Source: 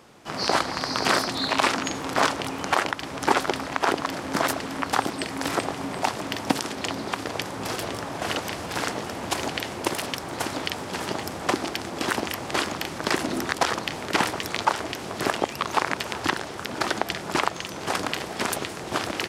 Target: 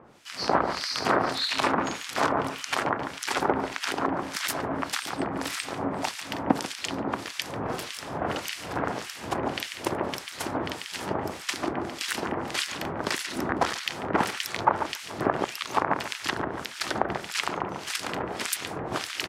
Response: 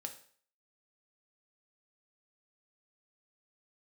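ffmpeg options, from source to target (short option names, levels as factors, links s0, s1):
-filter_complex "[0:a]asplit=2[s0][s1];[s1]adelay=142,lowpass=f=2600:p=1,volume=0.501,asplit=2[s2][s3];[s3]adelay=142,lowpass=f=2600:p=1,volume=0.51,asplit=2[s4][s5];[s5]adelay=142,lowpass=f=2600:p=1,volume=0.51,asplit=2[s6][s7];[s7]adelay=142,lowpass=f=2600:p=1,volume=0.51,asplit=2[s8][s9];[s9]adelay=142,lowpass=f=2600:p=1,volume=0.51,asplit=2[s10][s11];[s11]adelay=142,lowpass=f=2600:p=1,volume=0.51[s12];[s0][s2][s4][s6][s8][s10][s12]amix=inputs=7:normalize=0,acrossover=split=1700[s13][s14];[s13]aeval=exprs='val(0)*(1-1/2+1/2*cos(2*PI*1.7*n/s))':c=same[s15];[s14]aeval=exprs='val(0)*(1-1/2-1/2*cos(2*PI*1.7*n/s))':c=same[s16];[s15][s16]amix=inputs=2:normalize=0,volume=1.19"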